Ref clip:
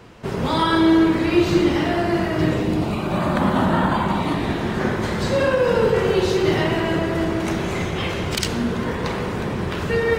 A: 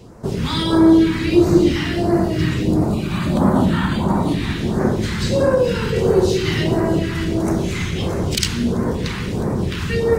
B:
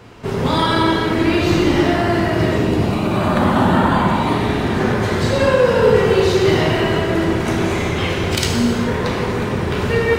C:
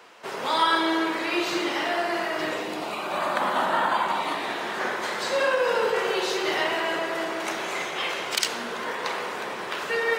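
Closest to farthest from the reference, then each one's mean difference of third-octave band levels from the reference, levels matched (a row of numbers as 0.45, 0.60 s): B, A, C; 2.0, 4.0, 8.0 dB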